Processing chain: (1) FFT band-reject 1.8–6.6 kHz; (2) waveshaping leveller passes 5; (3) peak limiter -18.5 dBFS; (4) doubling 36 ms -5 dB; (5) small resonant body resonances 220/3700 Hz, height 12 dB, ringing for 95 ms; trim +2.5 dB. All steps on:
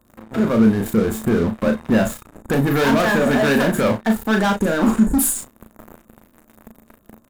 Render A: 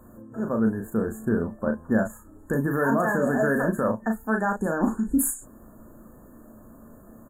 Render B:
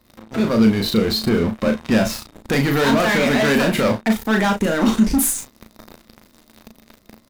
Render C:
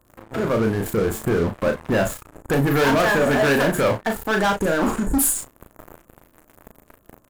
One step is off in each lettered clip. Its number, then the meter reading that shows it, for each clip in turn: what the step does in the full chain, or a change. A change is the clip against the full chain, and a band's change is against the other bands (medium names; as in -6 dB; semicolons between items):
2, crest factor change +2.5 dB; 1, 4 kHz band +6.5 dB; 5, 250 Hz band -6.0 dB